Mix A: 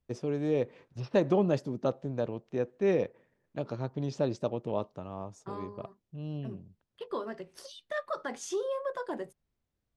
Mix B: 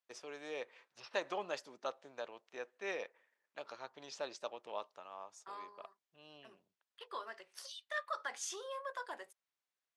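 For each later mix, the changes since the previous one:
master: add high-pass filter 1,100 Hz 12 dB per octave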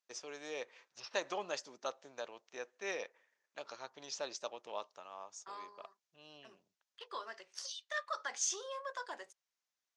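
master: add low-pass with resonance 6,400 Hz, resonance Q 2.8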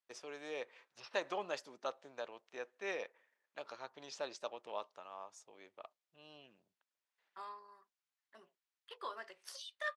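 second voice: entry +1.90 s
master: remove low-pass with resonance 6,400 Hz, resonance Q 2.8

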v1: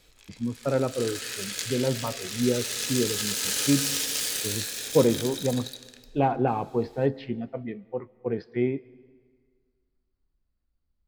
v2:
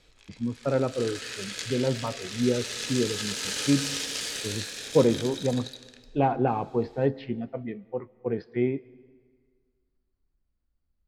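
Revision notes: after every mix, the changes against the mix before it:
master: add high-frequency loss of the air 60 metres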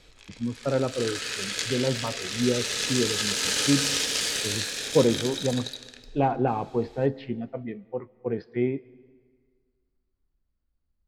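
background +5.5 dB

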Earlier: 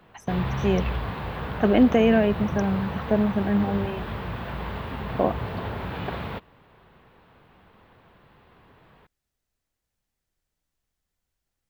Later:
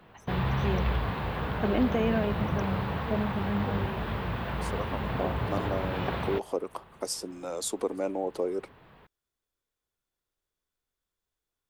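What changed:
first voice −9.0 dB
second voice: unmuted

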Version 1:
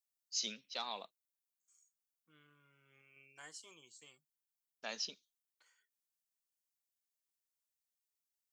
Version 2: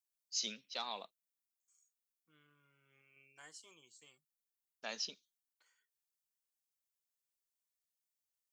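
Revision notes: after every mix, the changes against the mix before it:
second voice −3.0 dB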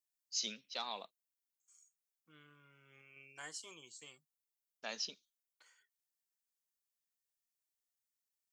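second voice +8.0 dB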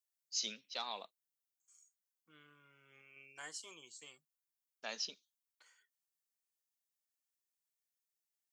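master: add low-shelf EQ 120 Hz −11.5 dB

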